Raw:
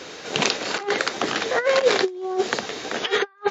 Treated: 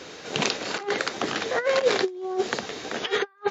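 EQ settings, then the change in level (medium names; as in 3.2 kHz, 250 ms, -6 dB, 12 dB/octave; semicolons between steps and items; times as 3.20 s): bass shelf 230 Hz +4.5 dB; -4.0 dB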